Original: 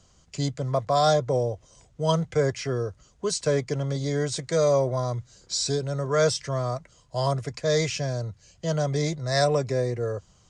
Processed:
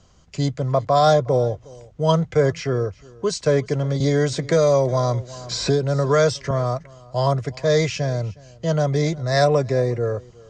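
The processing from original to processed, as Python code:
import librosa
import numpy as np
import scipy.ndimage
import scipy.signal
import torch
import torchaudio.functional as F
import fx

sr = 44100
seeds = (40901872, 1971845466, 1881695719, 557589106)

y = scipy.signal.sosfilt(scipy.signal.butter(4, 7900.0, 'lowpass', fs=sr, output='sos'), x)
y = fx.high_shelf(y, sr, hz=4200.0, db=-7.5)
y = y + 10.0 ** (-23.0 / 20.0) * np.pad(y, (int(363 * sr / 1000.0), 0))[:len(y)]
y = fx.band_squash(y, sr, depth_pct=70, at=(4.0, 6.51))
y = F.gain(torch.from_numpy(y), 5.5).numpy()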